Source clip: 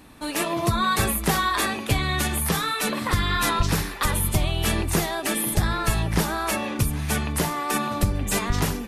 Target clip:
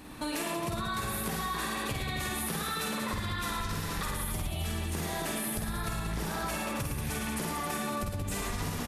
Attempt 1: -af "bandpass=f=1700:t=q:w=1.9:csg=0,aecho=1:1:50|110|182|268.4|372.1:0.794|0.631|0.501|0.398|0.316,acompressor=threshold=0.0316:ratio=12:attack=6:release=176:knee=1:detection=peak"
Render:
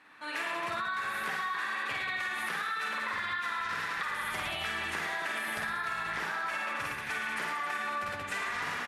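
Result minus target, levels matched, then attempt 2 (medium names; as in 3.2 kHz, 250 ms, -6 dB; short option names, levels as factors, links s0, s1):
2 kHz band +6.5 dB
-af "aecho=1:1:50|110|182|268.4|372.1:0.794|0.631|0.501|0.398|0.316,acompressor=threshold=0.0316:ratio=12:attack=6:release=176:knee=1:detection=peak"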